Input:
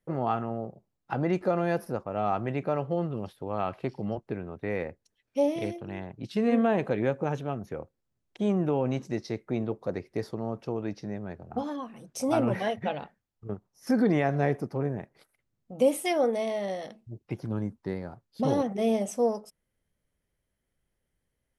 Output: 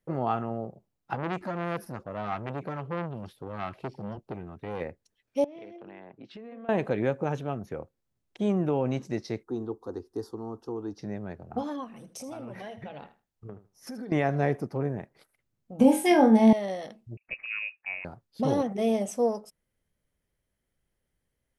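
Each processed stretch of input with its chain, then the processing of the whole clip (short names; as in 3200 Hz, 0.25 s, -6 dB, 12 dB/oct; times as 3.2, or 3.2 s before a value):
1.15–4.81 LFO notch sine 2.3 Hz 440–2000 Hz + core saturation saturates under 1100 Hz
5.44–6.69 BPF 260–2800 Hz + compressor 8:1, threshold -41 dBFS
9.43–10.99 bell 2200 Hz -6.5 dB 1.2 oct + fixed phaser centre 600 Hz, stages 6
11.84–14.12 compressor 5:1, threshold -38 dBFS + feedback echo 79 ms, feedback 16%, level -14 dB
15.79–16.53 small resonant body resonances 230/860/1600 Hz, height 17 dB, ringing for 40 ms + compressor 3:1, threshold -15 dBFS + flutter echo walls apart 3.9 m, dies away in 0.26 s
17.17–18.05 HPF 58 Hz + low shelf 450 Hz -4.5 dB + inverted band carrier 2700 Hz
whole clip: dry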